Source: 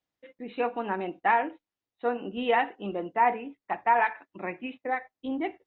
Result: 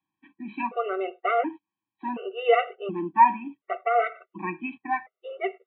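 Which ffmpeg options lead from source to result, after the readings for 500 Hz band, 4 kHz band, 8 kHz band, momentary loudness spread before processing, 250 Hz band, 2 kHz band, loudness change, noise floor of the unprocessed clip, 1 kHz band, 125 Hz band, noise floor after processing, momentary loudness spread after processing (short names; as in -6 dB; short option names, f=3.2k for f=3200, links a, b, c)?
+3.5 dB, +1.5 dB, n/a, 12 LU, 0.0 dB, -1.5 dB, +2.5 dB, under -85 dBFS, +2.5 dB, +1.0 dB, under -85 dBFS, 15 LU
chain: -af "highpass=170,equalizer=f=260:t=q:w=4:g=-6,equalizer=f=530:t=q:w=4:g=-4,equalizer=f=790:t=q:w=4:g=-5,equalizer=f=1.1k:t=q:w=4:g=4,equalizer=f=1.7k:t=q:w=4:g=-9,lowpass=f=2.7k:w=0.5412,lowpass=f=2.7k:w=1.3066,afftfilt=real='re*gt(sin(2*PI*0.69*pts/sr)*(1-2*mod(floor(b*sr/1024/380),2)),0)':imag='im*gt(sin(2*PI*0.69*pts/sr)*(1-2*mod(floor(b*sr/1024/380),2)),0)':win_size=1024:overlap=0.75,volume=9dB"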